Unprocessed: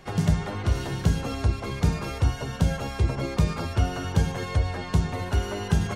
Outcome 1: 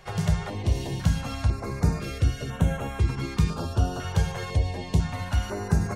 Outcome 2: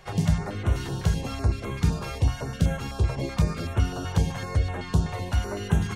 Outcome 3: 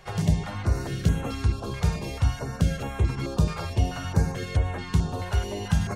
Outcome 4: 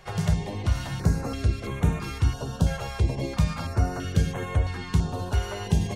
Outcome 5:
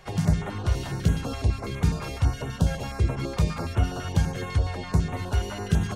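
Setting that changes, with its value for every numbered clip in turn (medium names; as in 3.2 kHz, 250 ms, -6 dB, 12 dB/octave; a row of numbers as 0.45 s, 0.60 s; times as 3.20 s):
step-sequenced notch, rate: 2 Hz, 7.9 Hz, 4.6 Hz, 3 Hz, 12 Hz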